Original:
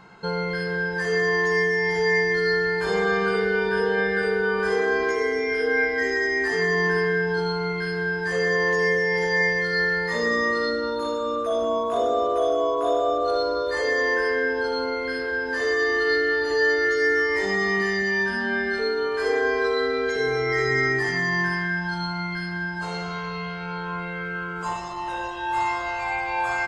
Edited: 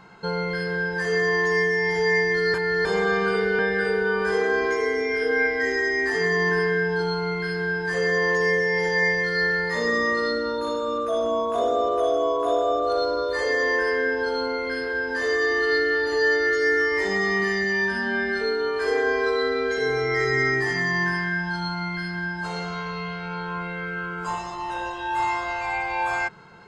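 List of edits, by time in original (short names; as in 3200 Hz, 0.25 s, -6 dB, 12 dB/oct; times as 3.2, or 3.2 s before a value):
2.54–2.85 reverse
3.59–3.97 cut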